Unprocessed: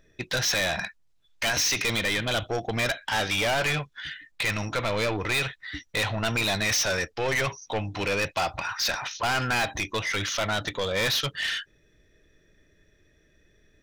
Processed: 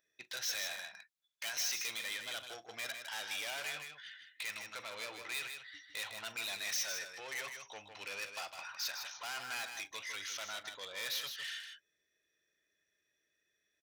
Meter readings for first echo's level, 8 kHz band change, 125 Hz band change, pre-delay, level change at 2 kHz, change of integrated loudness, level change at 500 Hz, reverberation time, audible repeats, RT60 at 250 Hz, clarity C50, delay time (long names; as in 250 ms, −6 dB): −18.5 dB, −10.0 dB, −34.5 dB, no reverb audible, −14.0 dB, −13.5 dB, −21.5 dB, no reverb audible, 2, no reverb audible, no reverb audible, 41 ms